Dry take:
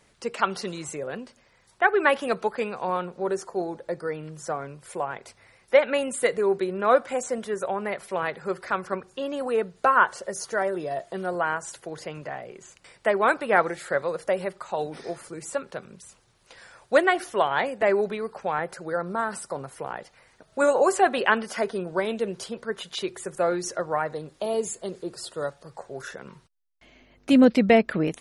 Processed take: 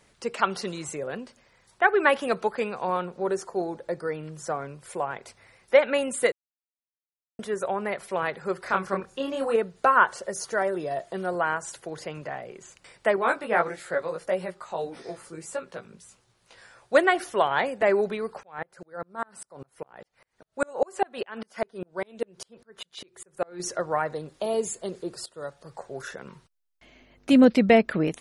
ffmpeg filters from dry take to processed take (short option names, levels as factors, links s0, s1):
-filter_complex "[0:a]asettb=1/sr,asplit=3[s0][s1][s2];[s0]atrim=end=8.634[s3];[s1]atrim=start=8.63:end=9.56,asetpts=PTS-STARTPTS,afade=t=in:d=0.004:c=qsin,afade=t=out:st=0.926:d=0.004:c=qsin,asplit=2[s4][s5];[s5]adelay=26,volume=0.75[s6];[s4][s6]amix=inputs=2:normalize=0,atrim=end_sample=41013[s7];[s2]atrim=start=9.556[s8];[s3][s7]acrossfade=d=0.004:c1=hsin:c2=qsin[s9];[s9][s8]acrossfade=d=0.004:c1=qsin:c2=hsin,asettb=1/sr,asplit=3[s10][s11][s12];[s10]atrim=end=13.164[s13];[s11]atrim=start=13.16:end=16.95,asetpts=PTS-STARTPTS,afade=t=in:d=0.004:c=qsin,afade=t=out:st=3.786:d=0.004:c=qsin,flanger=delay=16:depth=2.6:speed=1.6[s14];[s12]atrim=start=16.946[s15];[s13][s14]acrossfade=d=0.004:c1=hsin:c2=qsin[s16];[s16][s15]acrossfade=d=0.004:c1=qsin:c2=hsin,asettb=1/sr,asplit=3[s17][s18][s19];[s17]atrim=end=18.434[s20];[s18]atrim=start=18.43:end=23.6,asetpts=PTS-STARTPTS,afade=t=in:d=0.004:c=qsin,afade=t=out:st=5.166:d=0.004:c=qsin,aeval=exprs='val(0)*pow(10,-36*if(lt(mod(-5*n/s,1),2*abs(-5)/1000),1-mod(-5*n/s,1)/(2*abs(-5)/1000),(mod(-5*n/s,1)-2*abs(-5)/1000)/(1-2*abs(-5)/1000))/20)':c=same[s21];[s19]atrim=start=23.596[s22];[s20][s21]acrossfade=d=0.004:c1=hsin:c2=qsin[s23];[s23][s22]acrossfade=d=0.004:c1=qsin:c2=hsin,asplit=4[s24][s25][s26][s27];[s24]atrim=end=6.32,asetpts=PTS-STARTPTS,afade=t=out:st=6.316:d=0.004:c=hsin[s28];[s25]atrim=start=6.32:end=7.39,asetpts=PTS-STARTPTS,volume=0[s29];[s26]atrim=start=7.39:end=25.26,asetpts=PTS-STARTPTS,afade=t=in:d=0.004:c=hsin,afade=t=out:st=17.866:d=0.004:c=hsin:silence=0.141254[s30];[s27]atrim=start=25.26,asetpts=PTS-STARTPTS,afade=t=in:d=0.45:silence=0.141254[s31];[s28][s29][s30][s31]concat=n=4:v=0:a=1"